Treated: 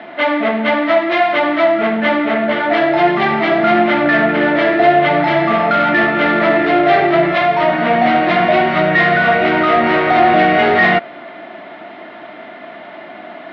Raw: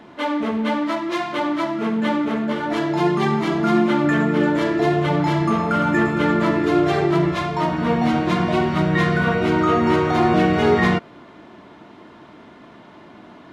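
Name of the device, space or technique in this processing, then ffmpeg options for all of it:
overdrive pedal into a guitar cabinet: -filter_complex "[0:a]asplit=2[link_01][link_02];[link_02]highpass=frequency=720:poles=1,volume=19dB,asoftclip=type=tanh:threshold=-5.5dB[link_03];[link_01][link_03]amix=inputs=2:normalize=0,lowpass=frequency=3300:poles=1,volume=-6dB,highpass=100,equalizer=frequency=130:width_type=q:width=4:gain=-4,equalizer=frequency=450:width_type=q:width=4:gain=-5,equalizer=frequency=670:width_type=q:width=4:gain=10,equalizer=frequency=1000:width_type=q:width=4:gain=-8,equalizer=frequency=2000:width_type=q:width=4:gain=6,lowpass=frequency=4000:width=0.5412,lowpass=frequency=4000:width=1.3066"

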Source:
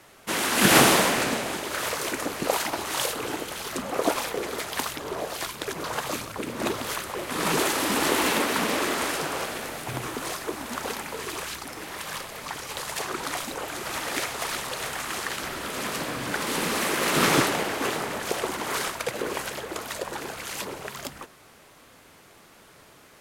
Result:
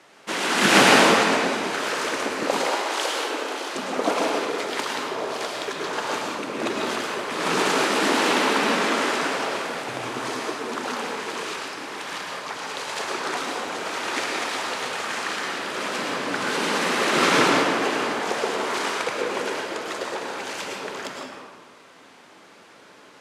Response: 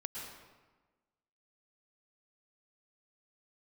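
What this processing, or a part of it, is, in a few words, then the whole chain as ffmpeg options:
supermarket ceiling speaker: -filter_complex "[0:a]highpass=210,lowpass=6700[link_01];[1:a]atrim=start_sample=2205[link_02];[link_01][link_02]afir=irnorm=-1:irlink=0,asettb=1/sr,asplit=3[link_03][link_04][link_05];[link_03]atrim=end=2.664[link_06];[link_04]atrim=start=2.66:end=3.75,asetpts=PTS-STARTPTS,afade=type=in:duration=0.004:curve=qsin,afade=type=out:start_time=1.086:duration=0.004:curve=qsin,highpass=frequency=280:width=0.5412,highpass=frequency=280:width=1.3066[link_07];[link_05]atrim=start=3.746[link_08];[link_06][link_07]acrossfade=duration=0.004:curve1=hsin:curve2=qsin[link_09];[link_09][link_08]acrossfade=duration=0.004:curve1=qsin:curve2=hsin,volume=4.5dB"

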